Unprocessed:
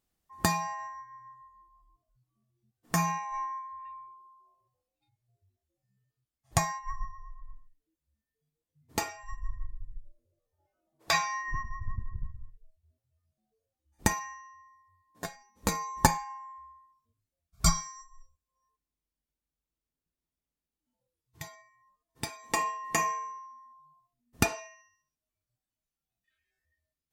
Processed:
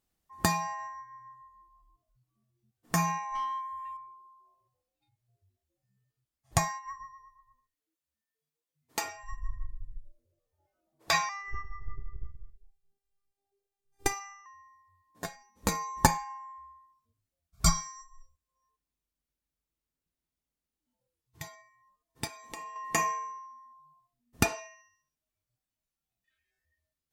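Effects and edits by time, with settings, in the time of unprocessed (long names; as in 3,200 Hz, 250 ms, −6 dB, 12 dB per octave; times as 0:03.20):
0:03.35–0:03.97: leveller curve on the samples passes 1
0:06.68–0:09.04: high-pass filter 690 Hz 6 dB per octave
0:11.29–0:14.46: phases set to zero 397 Hz
0:22.27–0:22.76: downward compressor 3 to 1, threshold −44 dBFS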